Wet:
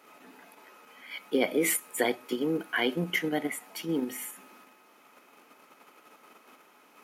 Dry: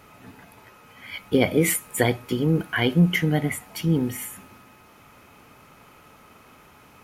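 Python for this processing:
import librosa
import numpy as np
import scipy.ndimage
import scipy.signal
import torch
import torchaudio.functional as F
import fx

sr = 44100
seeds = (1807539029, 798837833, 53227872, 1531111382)

p1 = scipy.signal.sosfilt(scipy.signal.butter(4, 250.0, 'highpass', fs=sr, output='sos'), x)
p2 = fx.level_steps(p1, sr, step_db=13)
p3 = p1 + (p2 * librosa.db_to_amplitude(0.0))
y = p3 * librosa.db_to_amplitude(-8.5)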